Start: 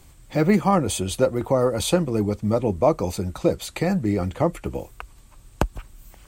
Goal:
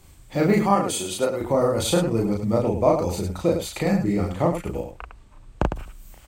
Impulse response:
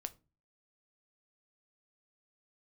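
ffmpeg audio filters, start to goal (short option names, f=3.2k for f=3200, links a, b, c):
-filter_complex "[0:a]asettb=1/sr,asplit=3[a][b][c];[a]atrim=end=0.714[d];[b]atrim=start=0.71:end=1.41,asetpts=PTS-STARTPTS,afade=t=in:d=0.004:c=qsin,afade=t=out:st=0.696:d=0.004:c=qsin,highpass=f=370:p=1[e];[c]atrim=start=1.406[f];[d][e]acrossfade=d=0.004:c1=hsin:c2=qsin[g];[g][f]acrossfade=d=0.004:c1=qsin:c2=hsin,asettb=1/sr,asplit=3[h][i][j];[h]atrim=end=4.804[k];[i]atrim=start=4.8:end=5.76,asetpts=PTS-STARTPTS,afade=t=in:d=0.004:c=qsin,afade=t=out:st=0.956:d=0.004:c=qsin,aemphasis=mode=reproduction:type=75fm[l];[j]atrim=start=5.756[m];[k][l]acrossfade=d=0.004:c1=hsin:c2=qsin[n];[n][m]acrossfade=d=0.004:c1=qsin:c2=hsin,aecho=1:1:34.99|105:0.891|0.447,volume=-2.5dB"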